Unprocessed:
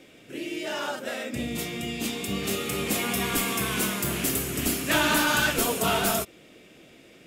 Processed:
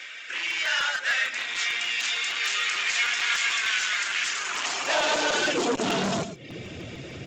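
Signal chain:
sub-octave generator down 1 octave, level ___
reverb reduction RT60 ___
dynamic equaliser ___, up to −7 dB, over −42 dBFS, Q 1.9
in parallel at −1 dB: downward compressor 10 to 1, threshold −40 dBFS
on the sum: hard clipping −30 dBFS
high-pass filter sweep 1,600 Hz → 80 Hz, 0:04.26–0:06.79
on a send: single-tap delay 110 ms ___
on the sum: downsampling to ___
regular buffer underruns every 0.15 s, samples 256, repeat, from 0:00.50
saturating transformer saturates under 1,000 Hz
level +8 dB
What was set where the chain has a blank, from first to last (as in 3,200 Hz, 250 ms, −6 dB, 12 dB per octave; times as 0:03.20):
−1 dB, 0.54 s, 1,200 Hz, −13 dB, 16,000 Hz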